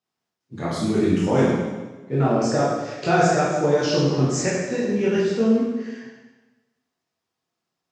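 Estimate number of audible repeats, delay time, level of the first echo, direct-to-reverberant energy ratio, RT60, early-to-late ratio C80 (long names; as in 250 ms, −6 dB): no echo audible, no echo audible, no echo audible, −8.5 dB, 1.2 s, 2.0 dB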